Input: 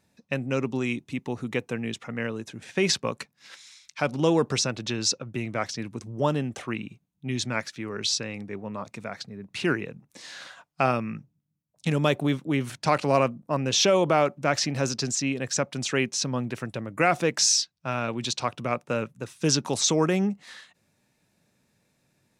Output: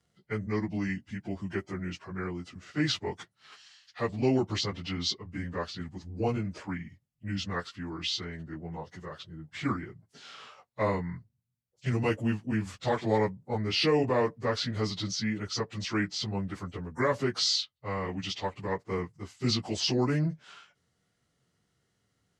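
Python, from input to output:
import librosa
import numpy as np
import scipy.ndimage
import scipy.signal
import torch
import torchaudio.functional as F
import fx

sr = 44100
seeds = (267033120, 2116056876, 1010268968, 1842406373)

y = fx.pitch_bins(x, sr, semitones=-4.0)
y = y * librosa.db_to_amplitude(-3.0)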